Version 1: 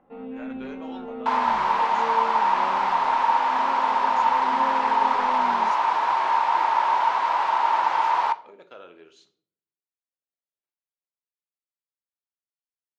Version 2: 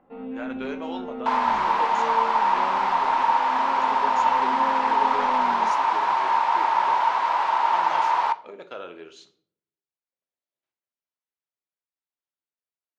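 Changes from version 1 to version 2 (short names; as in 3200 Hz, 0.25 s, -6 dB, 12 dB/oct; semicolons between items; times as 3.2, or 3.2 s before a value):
speech +7.5 dB; first sound: send on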